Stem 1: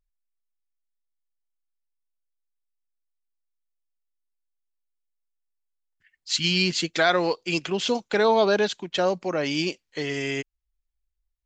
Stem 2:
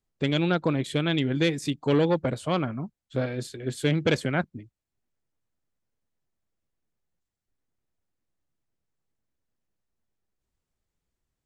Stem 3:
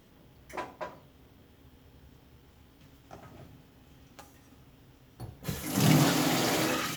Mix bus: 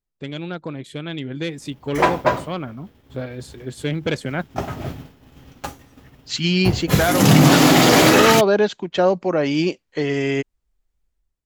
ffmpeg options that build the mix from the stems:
ffmpeg -i stem1.wav -i stem2.wav -i stem3.wav -filter_complex "[0:a]highshelf=frequency=2000:gain=-11.5,volume=-11.5dB[link_01];[1:a]volume=-6dB[link_02];[2:a]agate=range=-33dB:threshold=-45dB:ratio=3:detection=peak,highshelf=frequency=5600:gain=-5,adelay=1450,volume=3dB[link_03];[link_01][link_03]amix=inputs=2:normalize=0,dynaudnorm=framelen=110:gausssize=5:maxgain=14.5dB,alimiter=limit=-6.5dB:level=0:latency=1:release=102,volume=0dB[link_04];[link_02][link_04]amix=inputs=2:normalize=0,dynaudnorm=framelen=850:gausssize=3:maxgain=7dB" out.wav

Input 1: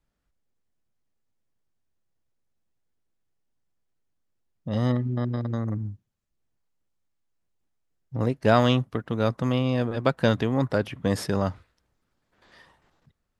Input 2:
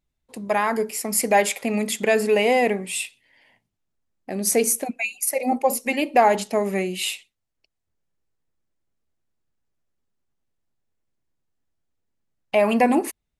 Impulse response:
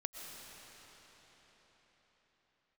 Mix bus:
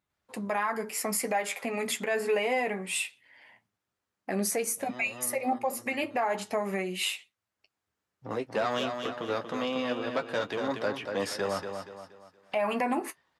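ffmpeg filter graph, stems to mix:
-filter_complex "[0:a]acrossover=split=240|3000[link_01][link_02][link_03];[link_01]acompressor=threshold=-55dB:ratio=1.5[link_04];[link_04][link_02][link_03]amix=inputs=3:normalize=0,asoftclip=type=tanh:threshold=-13.5dB,asplit=2[link_05][link_06];[link_06]highpass=frequency=720:poles=1,volume=11dB,asoftclip=type=tanh:threshold=-13.5dB[link_07];[link_05][link_07]amix=inputs=2:normalize=0,lowpass=frequency=6000:poles=1,volume=-6dB,adelay=100,volume=-1dB,asplit=2[link_08][link_09];[link_09]volume=-7dB[link_10];[1:a]equalizer=frequency=1300:width=0.84:gain=10,volume=0.5dB,asplit=2[link_11][link_12];[link_12]apad=whole_len=595237[link_13];[link_08][link_13]sidechaincompress=threshold=-25dB:ratio=8:attack=27:release=1090[link_14];[link_10]aecho=0:1:236|472|708|944|1180:1|0.38|0.144|0.0549|0.0209[link_15];[link_14][link_11][link_15]amix=inputs=3:normalize=0,highpass=79,flanger=delay=9.7:depth=2.1:regen=-37:speed=0.26:shape=sinusoidal,alimiter=limit=-19.5dB:level=0:latency=1:release=375"

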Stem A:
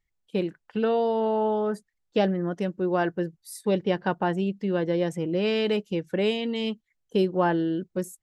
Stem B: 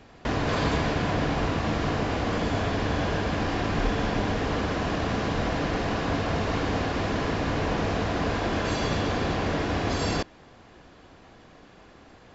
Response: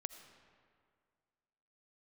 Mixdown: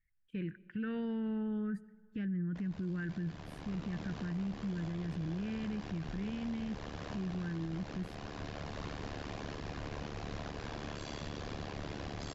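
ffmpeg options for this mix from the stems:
-filter_complex "[0:a]asubboost=boost=8:cutoff=240,alimiter=limit=-15dB:level=0:latency=1:release=35,firequalizer=gain_entry='entry(120,0);entry(730,-24);entry(1600,5);entry(4000,-18)':delay=0.05:min_phase=1,volume=-4dB,afade=type=out:start_time=2.93:duration=0.66:silence=0.375837,asplit=3[link_01][link_02][link_03];[link_02]volume=-10.5dB[link_04];[1:a]tremolo=f=73:d=0.974,acrossover=split=190|3000[link_05][link_06][link_07];[link_06]acompressor=threshold=-33dB:ratio=6[link_08];[link_05][link_08][link_07]amix=inputs=3:normalize=0,adelay=2300,volume=-8dB[link_09];[link_03]apad=whole_len=645737[link_10];[link_09][link_10]sidechaincompress=threshold=-38dB:ratio=6:attack=16:release=1190[link_11];[2:a]atrim=start_sample=2205[link_12];[link_04][link_12]afir=irnorm=-1:irlink=0[link_13];[link_01][link_11][link_13]amix=inputs=3:normalize=0,alimiter=level_in=7dB:limit=-24dB:level=0:latency=1:release=31,volume=-7dB"

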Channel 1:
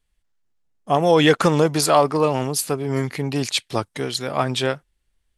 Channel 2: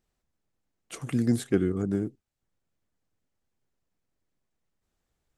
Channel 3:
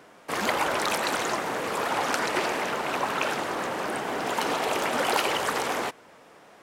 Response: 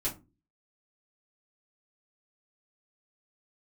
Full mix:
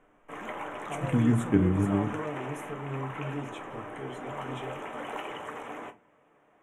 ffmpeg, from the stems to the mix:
-filter_complex "[0:a]alimiter=limit=-13.5dB:level=0:latency=1,volume=-18.5dB,asplit=2[link_01][link_02];[link_02]volume=-4.5dB[link_03];[1:a]equalizer=frequency=680:width_type=o:width=2.1:gain=-12.5,volume=3dB,asplit=2[link_04][link_05];[link_05]volume=-12dB[link_06];[2:a]volume=-15dB,asplit=2[link_07][link_08];[link_08]volume=-6.5dB[link_09];[3:a]atrim=start_sample=2205[link_10];[link_03][link_06][link_09]amix=inputs=3:normalize=0[link_11];[link_11][link_10]afir=irnorm=-1:irlink=0[link_12];[link_01][link_04][link_07][link_12]amix=inputs=4:normalize=0,asuperstop=centerf=4600:order=4:qfactor=1.3,aemphasis=mode=reproduction:type=50fm"

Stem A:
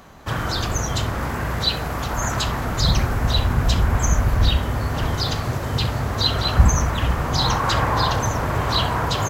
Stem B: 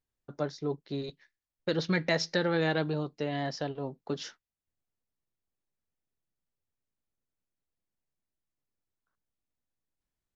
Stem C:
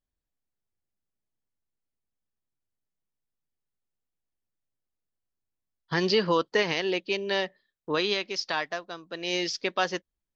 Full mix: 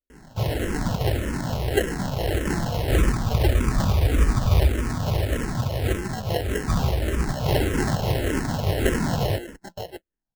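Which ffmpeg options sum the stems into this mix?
ffmpeg -i stem1.wav -i stem2.wav -i stem3.wav -filter_complex "[0:a]adelay=100,volume=1.5dB[link_01];[1:a]acompressor=threshold=-29dB:ratio=6,adelay=100,volume=1dB[link_02];[2:a]volume=-5.5dB,asplit=2[link_03][link_04];[link_04]apad=whole_len=414110[link_05];[link_01][link_05]sidechaincompress=threshold=-33dB:ratio=8:attack=46:release=236[link_06];[link_06][link_02][link_03]amix=inputs=3:normalize=0,acrusher=samples=37:mix=1:aa=0.000001,asplit=2[link_07][link_08];[link_08]afreqshift=-1.7[link_09];[link_07][link_09]amix=inputs=2:normalize=1" out.wav

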